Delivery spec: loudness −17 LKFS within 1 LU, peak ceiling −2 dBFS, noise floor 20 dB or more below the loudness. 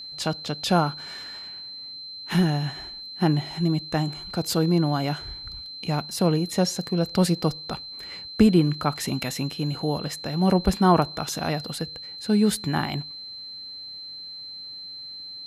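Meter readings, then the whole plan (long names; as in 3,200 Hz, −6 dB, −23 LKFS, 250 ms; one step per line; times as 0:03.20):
interfering tone 4,100 Hz; level of the tone −36 dBFS; integrated loudness −25.0 LKFS; sample peak −5.0 dBFS; target loudness −17.0 LKFS
→ notch filter 4,100 Hz, Q 30
level +8 dB
brickwall limiter −2 dBFS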